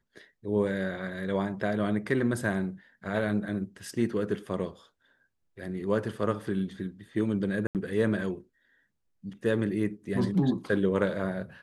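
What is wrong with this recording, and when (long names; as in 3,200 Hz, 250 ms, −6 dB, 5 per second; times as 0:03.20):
0:07.67–0:07.75: drop-out 78 ms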